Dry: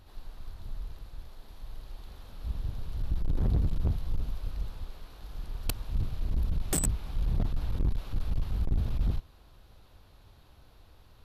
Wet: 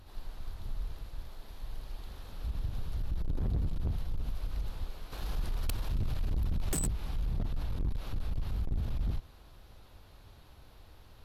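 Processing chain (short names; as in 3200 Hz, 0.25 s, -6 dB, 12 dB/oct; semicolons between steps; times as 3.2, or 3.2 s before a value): 5.12–6.89 sample leveller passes 2; limiter -28 dBFS, peak gain reduction 10.5 dB; gain +1.5 dB; AAC 64 kbps 48000 Hz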